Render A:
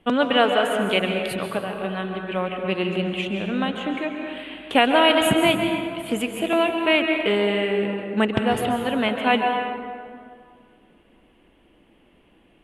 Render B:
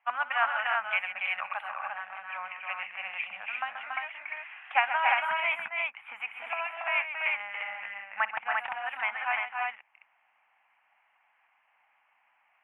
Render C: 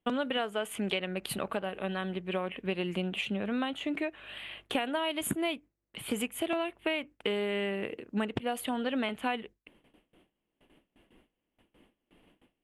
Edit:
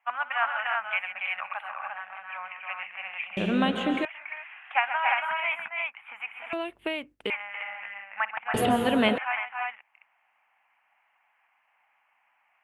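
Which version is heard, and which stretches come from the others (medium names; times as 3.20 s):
B
3.37–4.05 s: from A
6.53–7.30 s: from C
8.54–9.18 s: from A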